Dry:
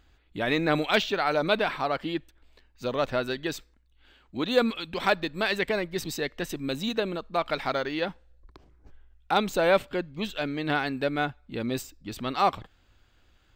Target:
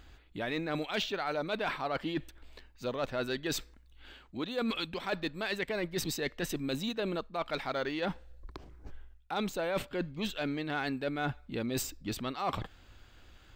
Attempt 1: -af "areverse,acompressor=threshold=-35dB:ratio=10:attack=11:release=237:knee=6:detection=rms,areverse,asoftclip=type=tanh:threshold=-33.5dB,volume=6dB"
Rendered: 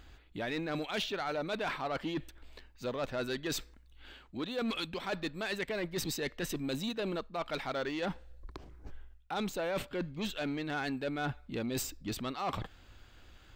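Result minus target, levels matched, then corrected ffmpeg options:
soft clip: distortion +11 dB
-af "areverse,acompressor=threshold=-35dB:ratio=10:attack=11:release=237:knee=6:detection=rms,areverse,asoftclip=type=tanh:threshold=-26dB,volume=6dB"

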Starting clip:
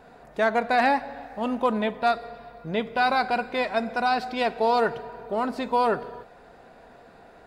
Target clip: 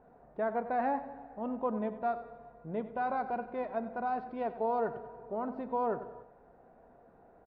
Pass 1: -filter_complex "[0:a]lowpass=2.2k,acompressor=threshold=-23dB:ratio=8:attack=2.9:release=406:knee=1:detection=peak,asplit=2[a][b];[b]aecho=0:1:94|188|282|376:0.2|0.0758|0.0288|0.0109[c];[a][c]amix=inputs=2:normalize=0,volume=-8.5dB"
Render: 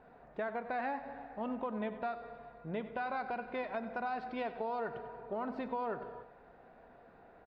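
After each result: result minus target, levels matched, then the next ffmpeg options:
compressor: peak gain reduction +8.5 dB; 2000 Hz band +6.0 dB
-filter_complex "[0:a]lowpass=2.2k,asplit=2[a][b];[b]aecho=0:1:94|188|282|376:0.2|0.0758|0.0288|0.0109[c];[a][c]amix=inputs=2:normalize=0,volume=-8.5dB"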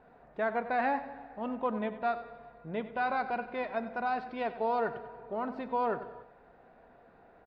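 2000 Hz band +6.0 dB
-filter_complex "[0:a]lowpass=1k,asplit=2[a][b];[b]aecho=0:1:94|188|282|376:0.2|0.0758|0.0288|0.0109[c];[a][c]amix=inputs=2:normalize=0,volume=-8.5dB"

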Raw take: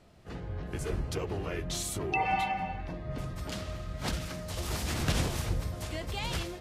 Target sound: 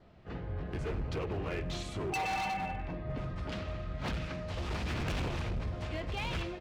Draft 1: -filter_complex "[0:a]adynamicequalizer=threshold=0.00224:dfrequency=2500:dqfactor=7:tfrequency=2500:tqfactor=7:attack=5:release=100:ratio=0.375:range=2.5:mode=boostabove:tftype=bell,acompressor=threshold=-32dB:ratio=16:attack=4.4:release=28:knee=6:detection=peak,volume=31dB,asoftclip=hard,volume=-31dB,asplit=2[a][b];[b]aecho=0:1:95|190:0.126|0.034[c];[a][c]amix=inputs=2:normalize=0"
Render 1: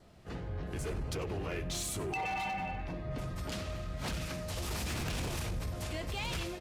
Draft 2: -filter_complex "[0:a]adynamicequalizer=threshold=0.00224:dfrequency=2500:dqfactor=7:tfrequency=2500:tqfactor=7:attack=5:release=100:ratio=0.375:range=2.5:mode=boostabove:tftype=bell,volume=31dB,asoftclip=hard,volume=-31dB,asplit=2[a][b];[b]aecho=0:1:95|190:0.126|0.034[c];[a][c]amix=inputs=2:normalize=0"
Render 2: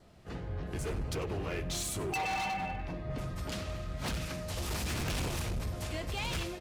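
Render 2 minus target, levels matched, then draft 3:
4000 Hz band +2.5 dB
-filter_complex "[0:a]adynamicequalizer=threshold=0.00224:dfrequency=2500:dqfactor=7:tfrequency=2500:tqfactor=7:attack=5:release=100:ratio=0.375:range=2.5:mode=boostabove:tftype=bell,lowpass=3.2k,volume=31dB,asoftclip=hard,volume=-31dB,asplit=2[a][b];[b]aecho=0:1:95|190:0.126|0.034[c];[a][c]amix=inputs=2:normalize=0"

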